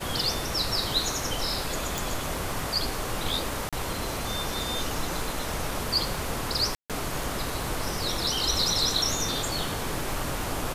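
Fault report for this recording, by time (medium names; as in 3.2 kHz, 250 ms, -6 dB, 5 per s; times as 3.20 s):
crackle 32 per s -35 dBFS
1.98 s: pop
3.69–3.73 s: dropout 36 ms
6.75–6.90 s: dropout 147 ms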